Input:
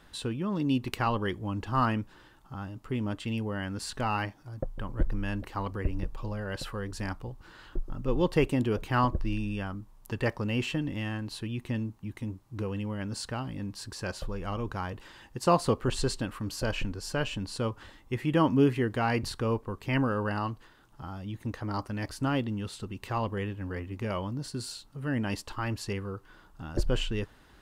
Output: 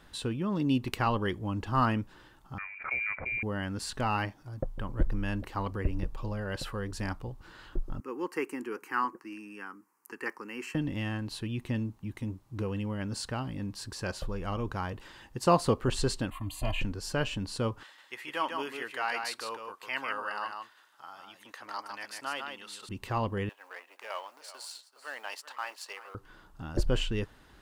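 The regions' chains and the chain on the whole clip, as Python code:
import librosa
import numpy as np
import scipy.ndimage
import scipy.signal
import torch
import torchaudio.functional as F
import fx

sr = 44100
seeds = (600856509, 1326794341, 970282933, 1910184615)

y = fx.chain(x, sr, fx.highpass(hz=170.0, slope=24),
    fx.freq_invert(carrier_hz=2600),
    fx.pre_swell(db_per_s=100.0), at=(2.58, 3.43))
y = fx.chain(y, sr, fx.highpass(hz=320.0, slope=24),
    fx.fixed_phaser(hz=1500.0, stages=4), at=(8.0, 10.75))
y = fx.chain(y, sr, fx.fixed_phaser(hz=1500.0, stages=6),
    fx.comb(ms=2.9, depth=0.88), at=(16.3, 16.81))
y = fx.chain(y, sr, fx.highpass(hz=920.0, slope=12),
    fx.echo_single(ms=150, db=-5.0), at=(17.83, 22.89))
y = fx.chain(y, sr, fx.law_mismatch(coded='A'),
    fx.highpass(hz=640.0, slope=24),
    fx.echo_single(ms=384, db=-15.0), at=(23.49, 26.15))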